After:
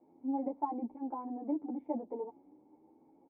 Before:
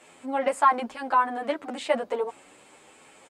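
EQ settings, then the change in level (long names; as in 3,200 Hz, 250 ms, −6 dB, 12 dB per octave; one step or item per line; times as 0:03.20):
dynamic equaliser 1,500 Hz, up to −6 dB, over −38 dBFS, Q 2
formant resonators in series u
high-frequency loss of the air 270 metres
+3.5 dB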